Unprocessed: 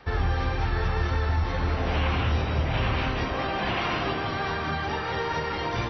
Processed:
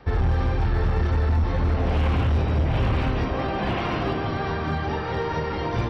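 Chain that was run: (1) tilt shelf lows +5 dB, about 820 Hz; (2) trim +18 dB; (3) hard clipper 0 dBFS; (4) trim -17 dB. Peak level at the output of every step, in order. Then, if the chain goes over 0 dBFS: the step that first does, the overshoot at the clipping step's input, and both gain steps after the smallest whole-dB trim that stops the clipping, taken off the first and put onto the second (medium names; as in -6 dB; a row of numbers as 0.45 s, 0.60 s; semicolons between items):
-11.0 dBFS, +7.0 dBFS, 0.0 dBFS, -17.0 dBFS; step 2, 7.0 dB; step 2 +11 dB, step 4 -10 dB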